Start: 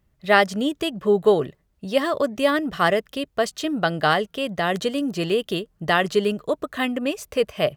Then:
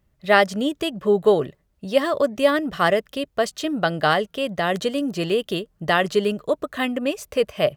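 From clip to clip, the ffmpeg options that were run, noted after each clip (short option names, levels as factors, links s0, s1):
-af "equalizer=f=570:t=o:w=0.25:g=3"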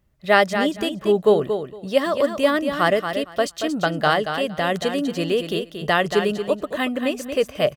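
-af "aecho=1:1:230|460|690:0.398|0.0677|0.0115"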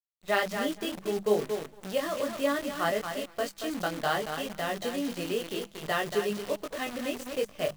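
-af "flanger=delay=19:depth=3:speed=0.66,acrusher=bits=6:dc=4:mix=0:aa=0.000001,bandreject=f=50:t=h:w=6,bandreject=f=100:t=h:w=6,bandreject=f=150:t=h:w=6,bandreject=f=200:t=h:w=6,volume=0.447"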